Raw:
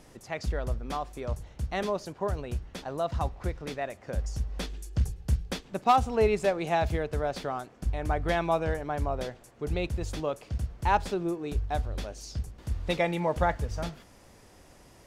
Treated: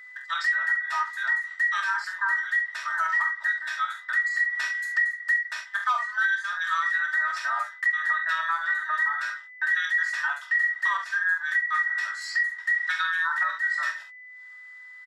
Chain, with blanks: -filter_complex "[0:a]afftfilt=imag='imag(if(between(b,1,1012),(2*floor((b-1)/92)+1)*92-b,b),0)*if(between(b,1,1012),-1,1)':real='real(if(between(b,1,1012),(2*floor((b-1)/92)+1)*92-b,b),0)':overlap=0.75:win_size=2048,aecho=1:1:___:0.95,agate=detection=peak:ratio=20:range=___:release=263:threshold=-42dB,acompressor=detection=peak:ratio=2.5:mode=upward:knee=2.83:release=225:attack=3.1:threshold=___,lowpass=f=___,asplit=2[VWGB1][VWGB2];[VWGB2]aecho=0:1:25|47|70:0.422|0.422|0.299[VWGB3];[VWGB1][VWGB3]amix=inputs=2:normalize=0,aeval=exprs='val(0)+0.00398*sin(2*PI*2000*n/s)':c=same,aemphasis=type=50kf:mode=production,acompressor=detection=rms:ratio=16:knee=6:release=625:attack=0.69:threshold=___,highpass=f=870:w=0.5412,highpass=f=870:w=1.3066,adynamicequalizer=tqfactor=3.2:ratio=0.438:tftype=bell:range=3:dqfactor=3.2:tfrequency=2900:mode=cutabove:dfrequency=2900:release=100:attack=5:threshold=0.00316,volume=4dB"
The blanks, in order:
3.2, -53dB, -36dB, 4100, -21dB